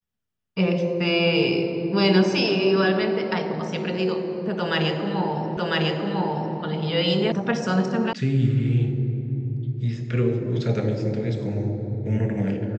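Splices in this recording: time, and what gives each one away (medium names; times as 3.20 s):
5.57 s: repeat of the last 1 s
7.32 s: sound stops dead
8.13 s: sound stops dead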